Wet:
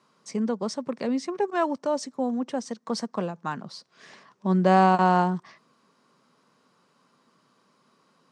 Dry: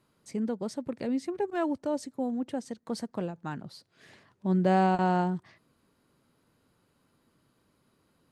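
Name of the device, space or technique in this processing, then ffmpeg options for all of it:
television speaker: -af "highpass=frequency=170:width=0.5412,highpass=frequency=170:width=1.3066,equalizer=frequency=310:width_type=q:width=4:gain=-7,equalizer=frequency=1100:width_type=q:width=4:gain=8,equalizer=frequency=5600:width_type=q:width=4:gain=7,lowpass=frequency=8600:width=0.5412,lowpass=frequency=8600:width=1.3066,volume=5.5dB"

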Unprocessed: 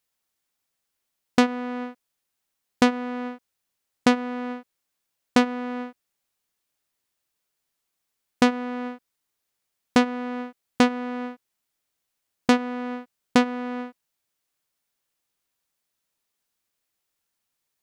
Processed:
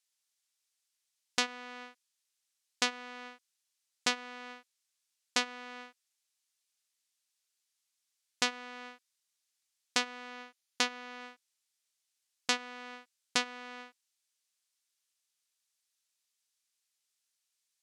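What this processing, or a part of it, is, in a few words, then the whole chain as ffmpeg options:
piezo pickup straight into a mixer: -filter_complex "[0:a]lowpass=6800,aderivative,asettb=1/sr,asplit=3[link_01][link_02][link_03];[link_01]atrim=end=10.304[link_04];[link_02]atrim=start=10.3:end=11.21,asetpts=PTS-STARTPTS,afade=type=in:duration=0.004:curve=qsin,afade=type=out:start_time=0.906:duration=0.004:curve=qsin,bandreject=frequency=8000:width=9[link_05];[link_03]atrim=start=11.206[link_06];[link_04][link_05]acrossfade=duration=0.004:curve1=hsin:curve2=qsin[link_07];[link_07][link_06]acrossfade=duration=0.004:curve1=qsin:curve2=hsin,volume=5.5dB"

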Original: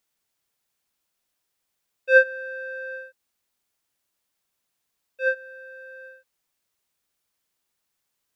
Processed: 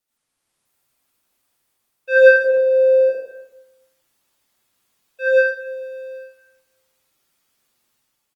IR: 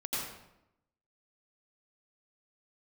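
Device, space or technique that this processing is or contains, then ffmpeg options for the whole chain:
speakerphone in a meeting room: -filter_complex "[0:a]asettb=1/sr,asplit=3[link_01][link_02][link_03];[link_01]atrim=end=2.364[link_04];[link_02]atrim=start=2.36:end=3.01,asetpts=PTS-STARTPTS,afade=type=in:duration=0.004:curve=qsin,afade=type=out:start_time=0.646:duration=0.004:curve=qsin,lowshelf=frequency=610:width_type=q:width=3:gain=8.5[link_05];[link_03]atrim=start=3.006[link_06];[link_04][link_05]acrossfade=duration=0.004:curve1=hsin:curve2=qsin[link_07];[link_07][link_06]acrossfade=duration=0.004:curve1=qsin:curve2=hsin[link_08];[1:a]atrim=start_sample=2205[link_09];[link_08][link_09]afir=irnorm=-1:irlink=0,asplit=2[link_10][link_11];[link_11]adelay=100,highpass=300,lowpass=3400,asoftclip=type=hard:threshold=-13.5dB,volume=-21dB[link_12];[link_10][link_12]amix=inputs=2:normalize=0,dynaudnorm=framelen=130:gausssize=7:maxgain=6dB" -ar 48000 -c:a libopus -b:a 24k

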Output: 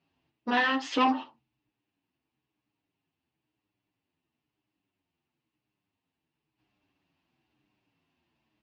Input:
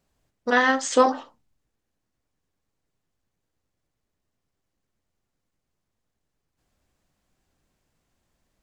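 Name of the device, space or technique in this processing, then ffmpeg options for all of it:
barber-pole flanger into a guitar amplifier: -filter_complex "[0:a]asplit=2[link_01][link_02];[link_02]adelay=8.2,afreqshift=-1[link_03];[link_01][link_03]amix=inputs=2:normalize=1,asoftclip=type=tanh:threshold=-19.5dB,highpass=110,equalizer=frequency=130:width_type=q:width=4:gain=4,equalizer=frequency=300:width_type=q:width=4:gain=9,equalizer=frequency=530:width_type=q:width=4:gain=-7,equalizer=frequency=910:width_type=q:width=4:gain=5,equalizer=frequency=1400:width_type=q:width=4:gain=-3,equalizer=frequency=2700:width_type=q:width=4:gain=10,lowpass=frequency=4600:width=0.5412,lowpass=frequency=4600:width=1.3066"

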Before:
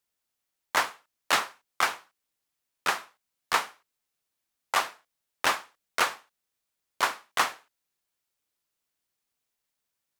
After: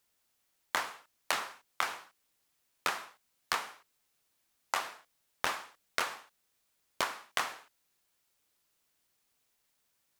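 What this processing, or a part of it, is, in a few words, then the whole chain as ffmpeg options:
serial compression, leveller first: -af "acompressor=threshold=-25dB:ratio=2.5,acompressor=threshold=-36dB:ratio=6,volume=6.5dB"

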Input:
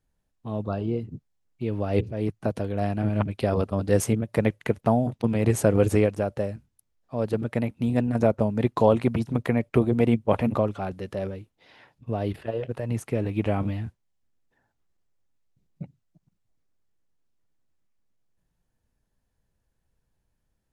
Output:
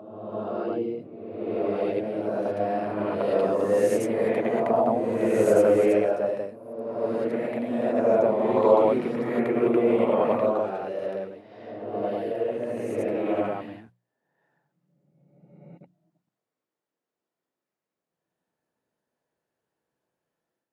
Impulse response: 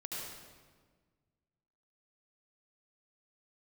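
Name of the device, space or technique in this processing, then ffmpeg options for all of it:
ghost voice: -filter_complex "[0:a]bandreject=frequency=60:width_type=h:width=6,bandreject=frequency=120:width_type=h:width=6,bandreject=frequency=180:width_type=h:width=6,areverse[link_01];[1:a]atrim=start_sample=2205[link_02];[link_01][link_02]afir=irnorm=-1:irlink=0,areverse,highpass=350,highshelf=frequency=2200:gain=-10.5,volume=4dB"

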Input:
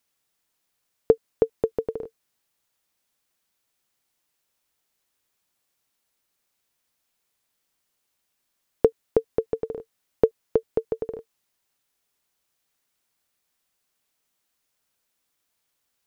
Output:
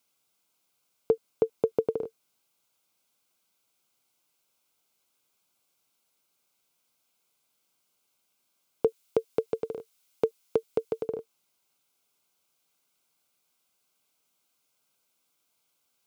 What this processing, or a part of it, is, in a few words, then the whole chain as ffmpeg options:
PA system with an anti-feedback notch: -filter_complex "[0:a]asettb=1/sr,asplit=3[link_01][link_02][link_03];[link_01]atrim=end=8.874[link_04];[link_02]atrim=start=8.87:end=11.05,asetpts=PTS-STARTPTS,afade=type=in:duration=0.004:curve=qsin,afade=type=out:start_time=2.176:duration=0.004:curve=qsin,tiltshelf=frequency=1400:gain=-5.5[link_05];[link_03]atrim=start=11.046[link_06];[link_04][link_05]acrossfade=duration=0.004:curve1=hsin:curve2=qsin[link_07];[link_07][link_06]acrossfade=duration=0.004:curve1=qsin:curve2=hsin,highpass=110,asuperstop=centerf=1800:order=4:qfactor=4.5,alimiter=limit=-12.5dB:level=0:latency=1:release=37,volume=1.5dB"

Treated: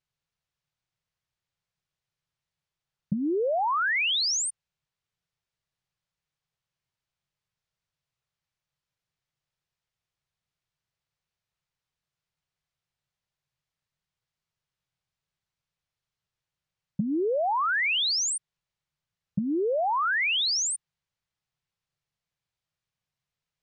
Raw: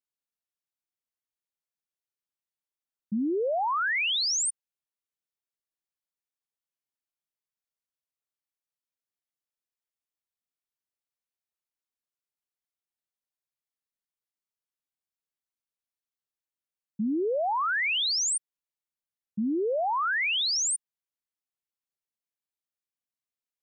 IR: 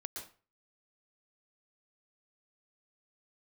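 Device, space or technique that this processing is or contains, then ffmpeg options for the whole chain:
jukebox: -af "lowpass=5400,lowshelf=frequency=190:width_type=q:width=3:gain=8,acompressor=threshold=-33dB:ratio=6,volume=8.5dB"

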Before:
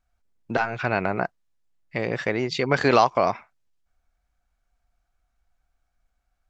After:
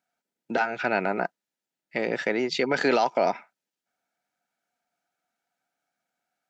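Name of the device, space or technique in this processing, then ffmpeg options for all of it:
PA system with an anti-feedback notch: -af "highpass=frequency=190:width=0.5412,highpass=frequency=190:width=1.3066,asuperstop=centerf=1100:order=8:qfactor=5.8,alimiter=limit=-12.5dB:level=0:latency=1:release=14"

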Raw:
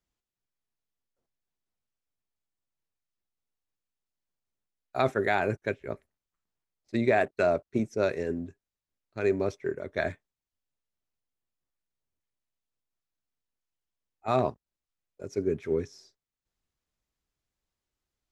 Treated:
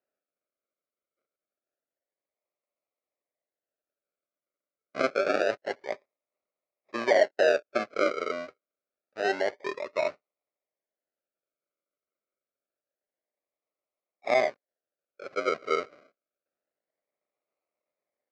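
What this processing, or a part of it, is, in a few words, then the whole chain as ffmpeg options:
circuit-bent sampling toy: -af "acrusher=samples=39:mix=1:aa=0.000001:lfo=1:lforange=23.4:lforate=0.27,highpass=430,equalizer=frequency=590:width_type=q:width=4:gain=9,equalizer=frequency=900:width_type=q:width=4:gain=-6,equalizer=frequency=1300:width_type=q:width=4:gain=6,equalizer=frequency=2200:width_type=q:width=4:gain=5,equalizer=frequency=3300:width_type=q:width=4:gain=-9,lowpass=frequency=5000:width=0.5412,lowpass=frequency=5000:width=1.3066"

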